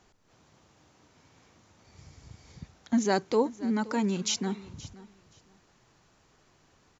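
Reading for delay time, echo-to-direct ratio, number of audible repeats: 524 ms, −19.0 dB, 2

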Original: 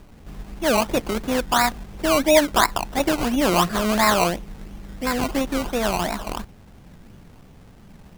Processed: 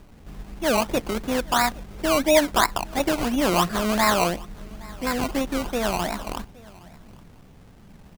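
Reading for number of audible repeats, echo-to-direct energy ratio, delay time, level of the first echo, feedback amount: 1, −23.5 dB, 816 ms, −23.5 dB, repeats not evenly spaced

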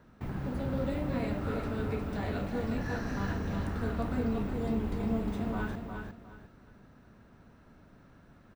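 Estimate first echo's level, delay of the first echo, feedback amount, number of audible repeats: −5.5 dB, 357 ms, 27%, 3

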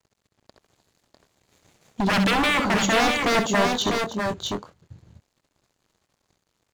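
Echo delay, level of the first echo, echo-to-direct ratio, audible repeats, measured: 67 ms, −8.0 dB, −2.0 dB, 3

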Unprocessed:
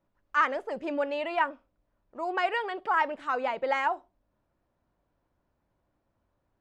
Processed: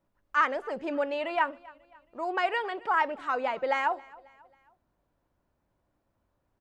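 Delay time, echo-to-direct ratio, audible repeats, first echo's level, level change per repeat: 271 ms, −22.0 dB, 2, −23.0 dB, −7.0 dB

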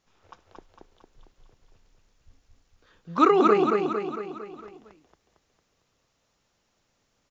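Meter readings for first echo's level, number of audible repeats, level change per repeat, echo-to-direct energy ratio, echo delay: −3.0 dB, 6, −5.0 dB, −1.5 dB, 227 ms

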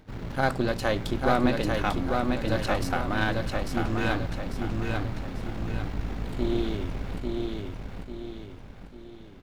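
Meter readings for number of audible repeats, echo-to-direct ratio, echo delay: 3, −2.5 dB, 845 ms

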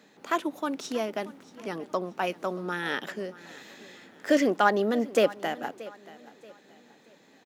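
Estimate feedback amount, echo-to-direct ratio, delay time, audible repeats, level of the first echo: 35%, −18.5 dB, 630 ms, 2, −19.0 dB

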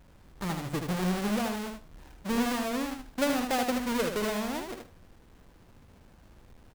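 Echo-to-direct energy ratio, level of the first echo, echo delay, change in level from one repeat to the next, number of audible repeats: −5.5 dB, −5.5 dB, 77 ms, −16.5 dB, 2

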